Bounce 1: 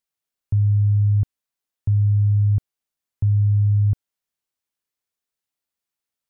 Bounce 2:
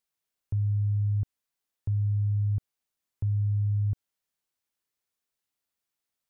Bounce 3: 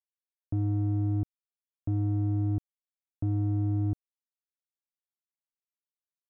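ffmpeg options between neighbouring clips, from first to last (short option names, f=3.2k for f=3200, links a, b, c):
-af "alimiter=limit=-22.5dB:level=0:latency=1:release=49"
-af "acrusher=bits=3:mix=0:aa=0.5"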